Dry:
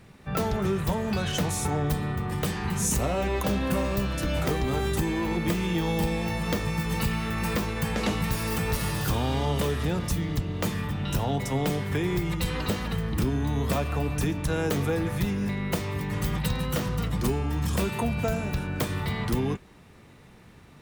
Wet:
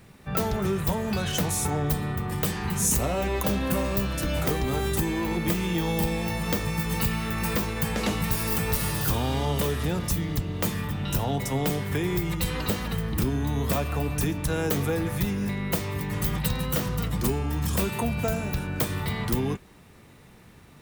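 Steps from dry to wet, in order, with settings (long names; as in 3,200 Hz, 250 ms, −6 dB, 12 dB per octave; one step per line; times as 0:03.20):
high-shelf EQ 10,000 Hz +10 dB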